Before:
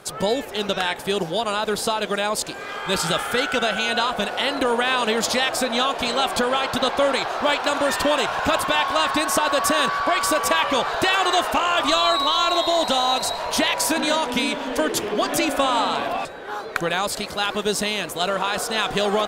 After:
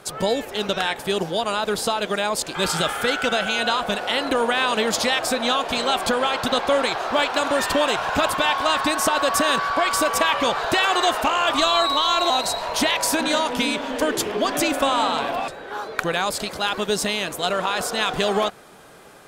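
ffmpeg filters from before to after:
-filter_complex "[0:a]asplit=3[s0][s1][s2];[s0]atrim=end=2.552[s3];[s1]atrim=start=2.848:end=12.602[s4];[s2]atrim=start=13.068[s5];[s3][s4]acrossfade=d=0.004:c1=hsin:c2=hsin[s6];[s6][s5]acrossfade=d=0.004:c1=hsin:c2=hsin"

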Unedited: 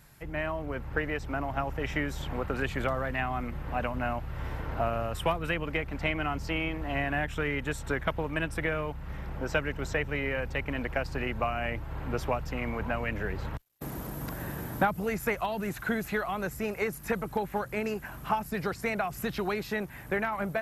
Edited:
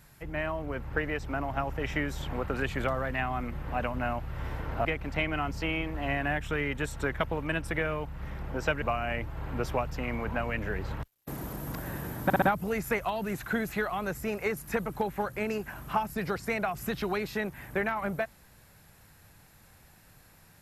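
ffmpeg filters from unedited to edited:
-filter_complex "[0:a]asplit=6[s0][s1][s2][s3][s4][s5];[s0]atrim=end=4.852[s6];[s1]atrim=start=5.718:end=9.692[s7];[s2]atrim=start=11.358:end=14.842[s8];[s3]atrim=start=14.778:end=14.842[s9];[s4]atrim=start=14.778:end=14.842[s10];[s5]atrim=start=14.778[s11];[s6][s7]acrossfade=d=0.004:c1=hsin:c2=hsin[s12];[s12][s8]acrossfade=d=0.004:c1=hsin:c2=hsin[s13];[s13][s9]acrossfade=d=0.004:c1=hsin:c2=hsin[s14];[s14][s10]acrossfade=d=0.004:c1=hsin:c2=hsin[s15];[s15][s11]acrossfade=d=0.004:c1=hsin:c2=hsin"

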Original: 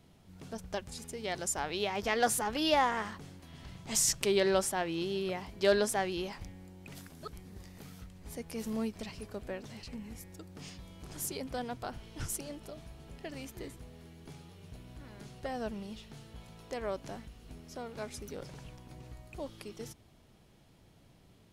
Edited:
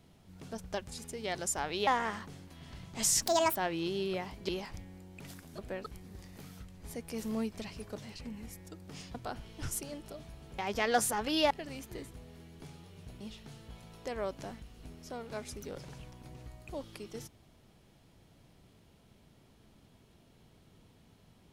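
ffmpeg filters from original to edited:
-filter_complex "[0:a]asplit=12[s0][s1][s2][s3][s4][s5][s6][s7][s8][s9][s10][s11];[s0]atrim=end=1.872[s12];[s1]atrim=start=2.788:end=4.144[s13];[s2]atrim=start=4.14:end=4.71,asetpts=PTS-STARTPTS,asetrate=74970,aresample=44100,atrim=end_sample=14786,asetpts=PTS-STARTPTS[s14];[s3]atrim=start=4.706:end=5.642[s15];[s4]atrim=start=6.158:end=7.262[s16];[s5]atrim=start=9.368:end=9.632[s17];[s6]atrim=start=7.258:end=9.372[s18];[s7]atrim=start=9.628:end=10.822[s19];[s8]atrim=start=11.718:end=13.162[s20];[s9]atrim=start=1.868:end=2.792[s21];[s10]atrim=start=13.158:end=14.862[s22];[s11]atrim=start=15.858[s23];[s12][s13]acrossfade=d=0.004:c1=hsin:c2=hsin[s24];[s24][s14]acrossfade=d=0.004:c1=hsin:c2=hsin[s25];[s25][s15]acrossfade=d=0.004:c1=hsin:c2=hsin[s26];[s26][s16]acrossfade=d=0.004:c1=hsin:c2=hsin[s27];[s27][s17]acrossfade=d=0.004:c1=hsin:c2=hsin[s28];[s28][s18]acrossfade=d=0.004:c1=hsin:c2=hsin[s29];[s29][s19]acrossfade=d=0.004:c1=hsin:c2=hsin[s30];[s30][s20]acrossfade=d=0.004:c1=hsin:c2=hsin[s31];[s31][s21]acrossfade=d=0.004:c1=hsin:c2=hsin[s32];[s32][s22]acrossfade=d=0.004:c1=hsin:c2=hsin[s33];[s33][s23]acrossfade=d=0.004:c1=hsin:c2=hsin"

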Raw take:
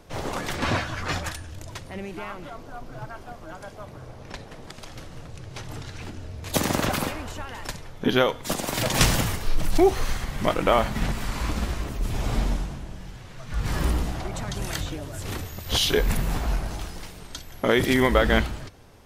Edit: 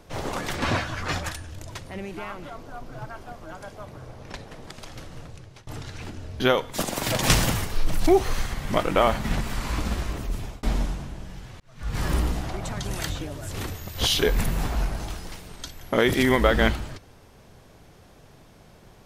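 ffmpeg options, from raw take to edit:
-filter_complex "[0:a]asplit=5[s0][s1][s2][s3][s4];[s0]atrim=end=5.67,asetpts=PTS-STARTPTS,afade=t=out:st=5.23:d=0.44:silence=0.0794328[s5];[s1]atrim=start=5.67:end=6.402,asetpts=PTS-STARTPTS,afade=t=in:d=0.004:c=hsin:silence=0.0794328[s6];[s2]atrim=start=8.108:end=12.34,asetpts=PTS-STARTPTS,afade=t=out:st=3.852:d=0.38[s7];[s3]atrim=start=12.34:end=13.31,asetpts=PTS-STARTPTS,afade=t=in:d=0.004:c=hsin,afade=t=out:st=0.966:d=0.004:c=hsin[s8];[s4]atrim=start=13.31,asetpts=PTS-STARTPTS,afade=t=in:d=0.4[s9];[s5][s6]concat=n=2:v=0:a=1[s10];[s7][s8][s9]concat=n=3:v=0:a=1[s11];[s10][s11]acrossfade=d=0.004:c1=hsin:c2=hsin"

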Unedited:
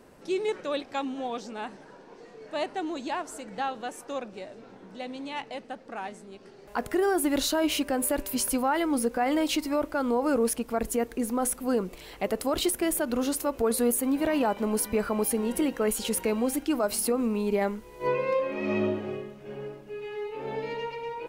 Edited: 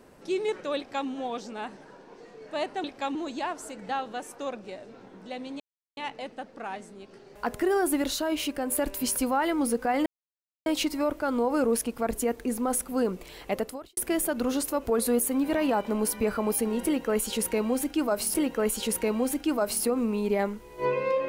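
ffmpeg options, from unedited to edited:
-filter_complex "[0:a]asplit=9[s0][s1][s2][s3][s4][s5][s6][s7][s8];[s0]atrim=end=2.842[s9];[s1]atrim=start=0.768:end=1.082[s10];[s2]atrim=start=2.838:end=5.29,asetpts=PTS-STARTPTS,afade=t=out:st=2.448:d=0.004:c=hsin,apad=pad_dur=0.37[s11];[s3]atrim=start=5.29:end=7.342,asetpts=PTS-STARTPTS,afade=t=in:d=0.004:c=hsin[s12];[s4]atrim=start=7.338:end=8.042,asetpts=PTS-STARTPTS,volume=0.708[s13];[s5]atrim=start=8.038:end=9.38,asetpts=PTS-STARTPTS,afade=t=out:st=1.338:d=0.004:c=hsin,apad=pad_dur=0.6[s14];[s6]atrim=start=9.38:end=12.69,asetpts=PTS-STARTPTS,afade=t=in:d=0.004:c=hsin,afade=t=out:st=2.93:d=0.38:c=qua[s15];[s7]atrim=start=12.69:end=17.062,asetpts=PTS-STARTPTS,afade=t=in:d=0.004:c=hsin[s16];[s8]atrim=start=15.558[s17];[s9][s10]acrossfade=d=0.004:c1=hsin:c2=hsin[s18];[s11][s12]concat=n=2:v=0:a=1[s19];[s18][s19]acrossfade=d=0.004:c1=hsin:c2=hsin[s20];[s20][s13]acrossfade=d=0.004:c1=hsin:c2=hsin[s21];[s14][s15][s16]concat=n=3:v=0:a=1[s22];[s21][s22]acrossfade=d=0.004:c1=hsin:c2=hsin[s23];[s23][s17]acrossfade=d=0.004:c1=hsin:c2=hsin"

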